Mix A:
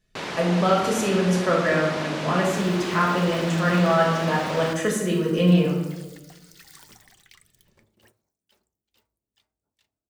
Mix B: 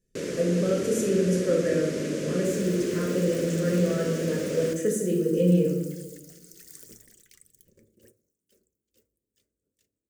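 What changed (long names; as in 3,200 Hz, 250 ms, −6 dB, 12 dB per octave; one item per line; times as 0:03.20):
speech −6.0 dB
master: add drawn EQ curve 110 Hz 0 dB, 520 Hz +7 dB, 800 Hz −25 dB, 1,600 Hz −8 dB, 3,900 Hz −10 dB, 6,700 Hz +4 dB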